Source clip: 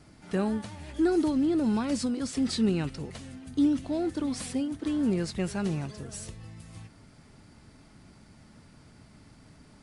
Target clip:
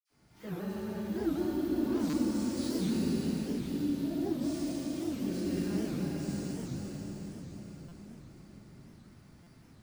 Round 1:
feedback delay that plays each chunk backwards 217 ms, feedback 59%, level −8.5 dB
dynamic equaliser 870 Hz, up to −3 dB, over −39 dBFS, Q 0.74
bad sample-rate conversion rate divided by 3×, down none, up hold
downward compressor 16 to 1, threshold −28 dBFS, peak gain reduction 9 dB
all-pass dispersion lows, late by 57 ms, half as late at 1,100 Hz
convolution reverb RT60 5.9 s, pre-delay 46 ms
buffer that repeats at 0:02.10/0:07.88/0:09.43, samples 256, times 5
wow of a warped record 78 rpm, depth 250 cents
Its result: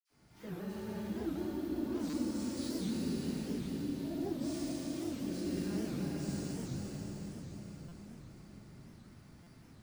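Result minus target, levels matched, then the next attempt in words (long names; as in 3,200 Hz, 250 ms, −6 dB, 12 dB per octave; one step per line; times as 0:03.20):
downward compressor: peak gain reduction +9 dB
feedback delay that plays each chunk backwards 217 ms, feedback 59%, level −8.5 dB
dynamic equaliser 870 Hz, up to −3 dB, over −39 dBFS, Q 0.74
bad sample-rate conversion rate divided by 3×, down none, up hold
all-pass dispersion lows, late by 57 ms, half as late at 1,100 Hz
convolution reverb RT60 5.9 s, pre-delay 46 ms
buffer that repeats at 0:02.10/0:07.88/0:09.43, samples 256, times 5
wow of a warped record 78 rpm, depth 250 cents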